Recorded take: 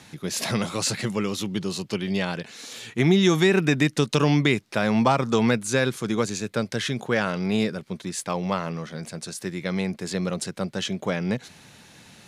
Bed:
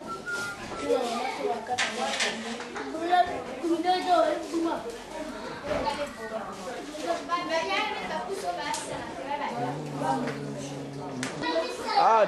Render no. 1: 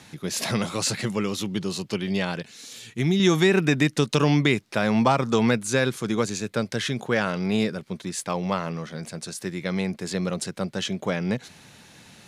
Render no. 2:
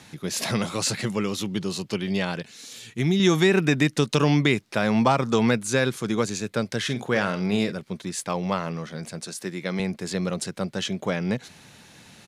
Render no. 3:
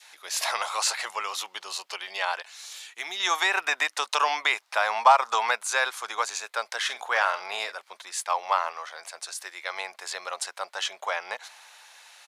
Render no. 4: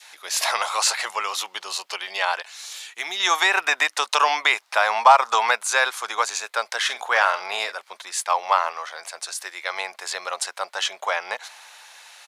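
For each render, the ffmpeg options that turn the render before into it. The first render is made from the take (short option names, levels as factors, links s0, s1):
-filter_complex "[0:a]asettb=1/sr,asplit=3[s0][s1][s2];[s0]atrim=end=2.424[s3];[s1]atrim=start=2.42:end=3.2,asetpts=PTS-STARTPTS,afade=t=in:d=0.004:c=qsin,afade=t=out:st=0.776:d=0.004:c=qsin,equalizer=f=860:w=0.36:g=-9[s4];[s2]atrim=start=3.196[s5];[s3][s4]acrossfade=d=0.004:c1=hsin:c2=qsin[s6];[s6][s5]acrossfade=d=0.004:c1=qsin:c2=hsin"
-filter_complex "[0:a]asplit=3[s0][s1][s2];[s0]afade=t=out:st=6.87:d=0.02[s3];[s1]asplit=2[s4][s5];[s5]adelay=49,volume=0.251[s6];[s4][s6]amix=inputs=2:normalize=0,afade=t=in:st=6.87:d=0.02,afade=t=out:st=7.71:d=0.02[s7];[s2]afade=t=in:st=7.71:d=0.02[s8];[s3][s7][s8]amix=inputs=3:normalize=0,asettb=1/sr,asplit=3[s9][s10][s11];[s9]atrim=end=9.204[s12];[s10]atrim=start=9.2:end=9.8,asetpts=PTS-STARTPTS,afade=t=in:d=0.004:c=qsin,afade=t=out:st=0.596:d=0.004:c=qsin,highpass=160[s13];[s11]atrim=start=9.796[s14];[s12][s13]acrossfade=d=0.004:c1=hsin:c2=qsin[s15];[s15][s14]acrossfade=d=0.004:c1=qsin:c2=hsin"
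-af "highpass=f=730:w=0.5412,highpass=f=730:w=1.3066,adynamicequalizer=threshold=0.00631:dfrequency=920:dqfactor=1.1:tfrequency=920:tqfactor=1.1:attack=5:release=100:ratio=0.375:range=4:mode=boostabove:tftype=bell"
-af "volume=1.78,alimiter=limit=0.794:level=0:latency=1"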